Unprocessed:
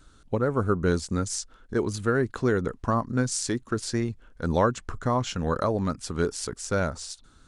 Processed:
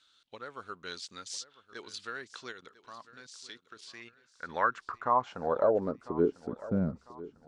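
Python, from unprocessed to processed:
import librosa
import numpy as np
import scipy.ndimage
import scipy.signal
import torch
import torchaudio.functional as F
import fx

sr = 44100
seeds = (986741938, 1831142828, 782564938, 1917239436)

y = fx.high_shelf(x, sr, hz=6300.0, db=-5.5)
y = fx.level_steps(y, sr, step_db=15, at=(2.51, 4.47), fade=0.02)
y = fx.filter_sweep_bandpass(y, sr, from_hz=3600.0, to_hz=200.0, start_s=3.76, end_s=6.75, q=2.3)
y = fx.echo_feedback(y, sr, ms=999, feedback_pct=37, wet_db=-17.5)
y = F.gain(torch.from_numpy(y), 4.0).numpy()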